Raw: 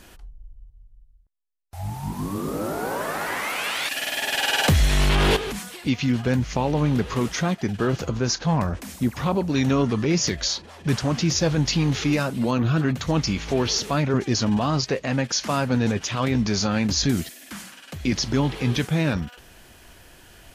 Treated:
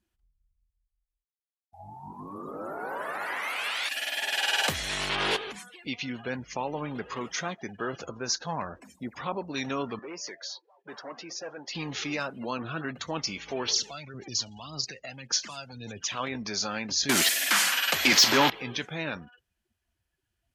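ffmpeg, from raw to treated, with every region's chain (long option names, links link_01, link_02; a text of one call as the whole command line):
ffmpeg -i in.wav -filter_complex "[0:a]asettb=1/sr,asplit=3[link_01][link_02][link_03];[link_01]atrim=end=9.994[link_04];[link_02]atrim=start=9.99:end=11.75,asetpts=PTS-STARTPTS,afade=type=in:duration=0.004:curve=qsin,afade=type=out:start_time=1.756:duration=0.004:curve=qsin,highpass=420,highshelf=frequency=2500:gain=-11.5,volume=26dB,asoftclip=hard,volume=-26dB[link_05];[link_03]atrim=start=11.746[link_06];[link_04][link_05]acrossfade=duration=0.004:curve1=hsin:curve2=qsin[link_07];[link_07][link_06]acrossfade=duration=0.004:curve1=qsin:curve2=hsin,asettb=1/sr,asplit=3[link_08][link_09][link_10];[link_08]atrim=end=13.684[link_11];[link_09]atrim=start=13.68:end=16.12,asetpts=PTS-STARTPTS,afade=type=in:duration=0.004:curve=qsin,afade=type=out:start_time=2.436:duration=0.004:curve=qsin,acrossover=split=120|3000[link_12][link_13][link_14];[link_13]acompressor=threshold=-32dB:ratio=8:attack=3.2:release=140:knee=2.83:detection=peak[link_15];[link_12][link_15][link_14]amix=inputs=3:normalize=0,aphaser=in_gain=1:out_gain=1:delay=1.5:decay=0.48:speed=1.8:type=sinusoidal[link_16];[link_10]atrim=start=16.116[link_17];[link_11][link_16]acrossfade=duration=0.004:curve1=hsin:curve2=qsin[link_18];[link_18][link_17]acrossfade=duration=0.004:curve1=qsin:curve2=hsin,asettb=1/sr,asplit=3[link_19][link_20][link_21];[link_19]atrim=end=17.094[link_22];[link_20]atrim=start=17.09:end=18.5,asetpts=PTS-STARTPTS,afade=type=in:duration=0.004:curve=qsin,afade=type=out:start_time=1.406:duration=0.004:curve=qsin,aeval=exprs='val(0)+0.00251*sin(2*PI*12000*n/s)':channel_layout=same,acontrast=84,asplit=2[link_23][link_24];[link_24]highpass=frequency=720:poles=1,volume=23dB,asoftclip=type=tanh:threshold=-5.5dB[link_25];[link_23][link_25]amix=inputs=2:normalize=0,lowpass=frequency=5900:poles=1,volume=-6dB[link_26];[link_21]atrim=start=18.496[link_27];[link_22][link_26]acrossfade=duration=0.004:curve1=hsin:curve2=qsin[link_28];[link_28][link_27]acrossfade=duration=0.004:curve1=qsin:curve2=hsin,afftdn=noise_reduction=31:noise_floor=-38,highpass=frequency=830:poles=1,volume=-3dB" out.wav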